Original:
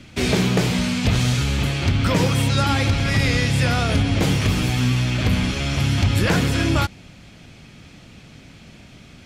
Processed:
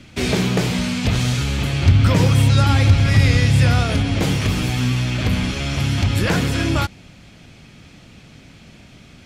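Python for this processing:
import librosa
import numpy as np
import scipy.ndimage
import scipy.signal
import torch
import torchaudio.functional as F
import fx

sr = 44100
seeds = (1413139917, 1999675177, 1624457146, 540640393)

y = fx.peak_eq(x, sr, hz=92.0, db=8.5, octaves=1.2, at=(1.73, 3.83))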